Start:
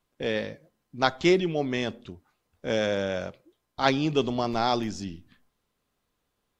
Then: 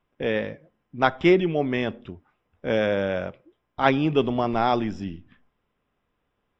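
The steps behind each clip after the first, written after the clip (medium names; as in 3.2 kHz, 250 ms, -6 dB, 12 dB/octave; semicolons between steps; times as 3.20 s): Savitzky-Golay filter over 25 samples; trim +3.5 dB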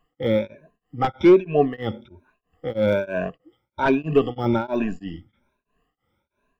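drifting ripple filter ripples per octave 1.5, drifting +1.2 Hz, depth 24 dB; de-esser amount 100%; tremolo of two beating tones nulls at 3.1 Hz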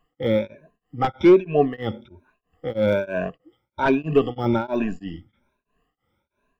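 no audible change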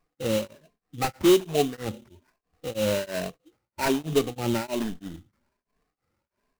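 sample-rate reducer 3.4 kHz, jitter 20%; trim -5 dB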